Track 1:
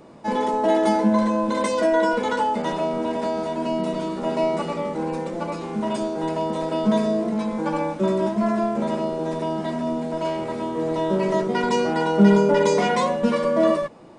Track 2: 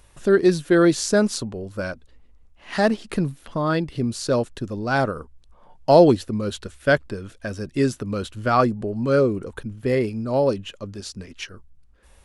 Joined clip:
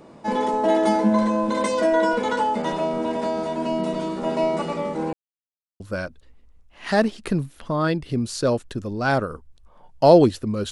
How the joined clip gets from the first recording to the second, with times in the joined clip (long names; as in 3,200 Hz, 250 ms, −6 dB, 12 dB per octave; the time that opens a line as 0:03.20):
track 1
0:05.13–0:05.80: silence
0:05.80: continue with track 2 from 0:01.66